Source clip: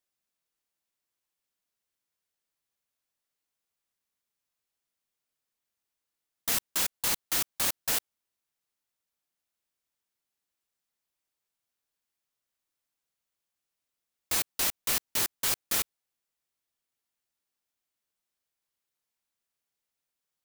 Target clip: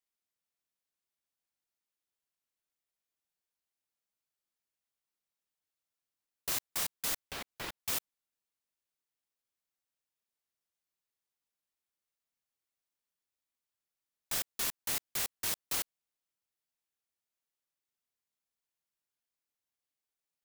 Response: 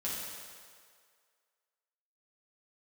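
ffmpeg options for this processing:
-filter_complex "[0:a]asettb=1/sr,asplit=3[link_01][link_02][link_03];[link_01]atrim=end=7.294[link_04];[link_02]atrim=start=7.29:end=7.79,asetpts=PTS-STARTPTS,afade=type=in:duration=0.004:curve=qsin,afade=type=out:start_time=0.496:duration=0.004:curve=qsin,acrossover=split=3600[link_05][link_06];[link_06]acompressor=threshold=-42dB:ratio=4:attack=1:release=60[link_07];[link_05][link_07]amix=inputs=2:normalize=0[link_08];[link_03]atrim=start=7.786[link_09];[link_04][link_08]acrossfade=duration=0.004:curve1=hsin:curve2=qsin[link_10];[link_10][link_09]acrossfade=duration=0.004:curve1=qsin:curve2=hsin,aeval=exprs='val(0)*sin(2*PI*1600*n/s+1600*0.6/0.86*sin(2*PI*0.86*n/s))':channel_layout=same,volume=-3dB"

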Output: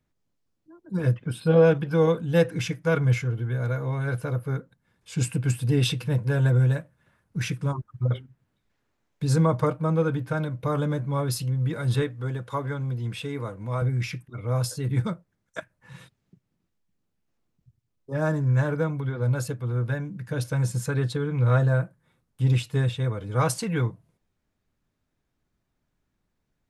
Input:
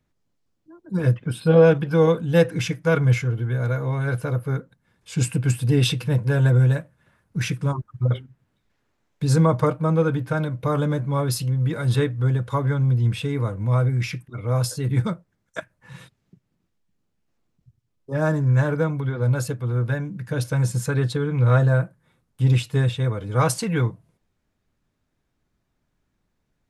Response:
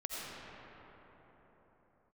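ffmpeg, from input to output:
-filter_complex "[0:a]asettb=1/sr,asplit=3[link_01][link_02][link_03];[link_01]atrim=end=12.024[link_04];[link_02]atrim=start=12.02:end=13.82,asetpts=PTS-STARTPTS,afade=type=in:duration=0.004:curve=qsin,afade=type=out:start_time=1.796:duration=0.004:curve=qsin,highpass=frequency=240:poles=1[link_05];[link_03]atrim=start=13.816[link_06];[link_04][link_05]acrossfade=duration=0.004:curve1=hsin:curve2=qsin[link_07];[link_07][link_06]acrossfade=duration=0.004:curve1=qsin:curve2=hsin,volume=-3.5dB"

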